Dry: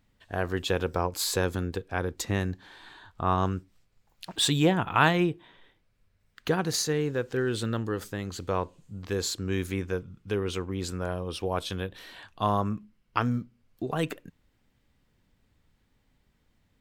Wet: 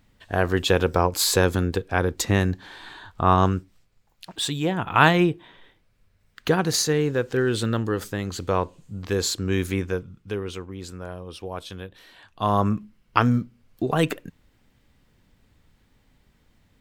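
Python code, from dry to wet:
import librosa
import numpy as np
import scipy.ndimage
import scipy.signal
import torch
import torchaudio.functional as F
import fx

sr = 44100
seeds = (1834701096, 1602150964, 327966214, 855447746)

y = fx.gain(x, sr, db=fx.line((3.44, 7.5), (4.6, -3.5), (5.02, 5.5), (9.77, 5.5), (10.74, -4.0), (12.18, -4.0), (12.65, 7.5)))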